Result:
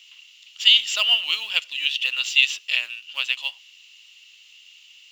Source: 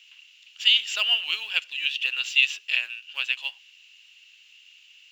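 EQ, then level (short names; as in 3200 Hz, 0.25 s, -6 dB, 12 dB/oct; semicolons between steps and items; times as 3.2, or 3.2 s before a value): thirty-one-band EQ 400 Hz -8 dB, 800 Hz -4 dB, 1600 Hz -10 dB, 2500 Hz -6 dB; +6.5 dB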